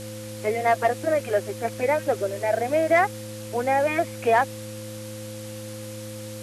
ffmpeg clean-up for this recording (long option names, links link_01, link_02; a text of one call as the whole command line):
ffmpeg -i in.wav -af "bandreject=frequency=108.3:width_type=h:width=4,bandreject=frequency=216.6:width_type=h:width=4,bandreject=frequency=324.9:width_type=h:width=4,bandreject=frequency=520:width=30,afftdn=noise_reduction=30:noise_floor=-36" out.wav